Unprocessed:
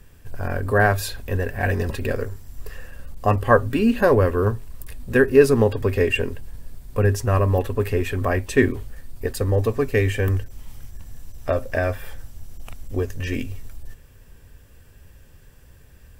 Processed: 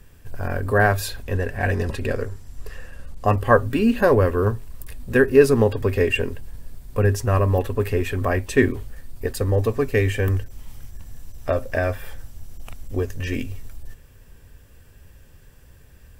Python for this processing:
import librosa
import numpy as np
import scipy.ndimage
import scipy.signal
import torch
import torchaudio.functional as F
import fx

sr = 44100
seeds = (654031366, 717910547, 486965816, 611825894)

y = fx.lowpass(x, sr, hz=11000.0, slope=12, at=(1.23, 3.26))